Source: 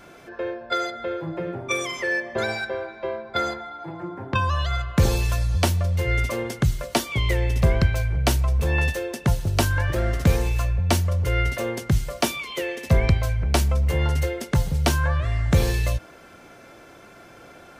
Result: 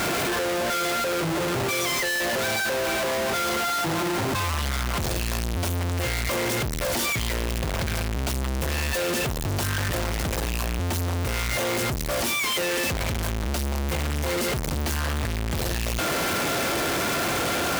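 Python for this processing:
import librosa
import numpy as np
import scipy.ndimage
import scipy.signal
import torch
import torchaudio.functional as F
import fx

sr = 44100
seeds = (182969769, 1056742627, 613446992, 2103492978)

y = np.sign(x) * np.sqrt(np.mean(np.square(x)))
y = scipy.signal.sosfilt(scipy.signal.butter(2, 46.0, 'highpass', fs=sr, output='sos'), y)
y = y * 10.0 ** (-2.5 / 20.0)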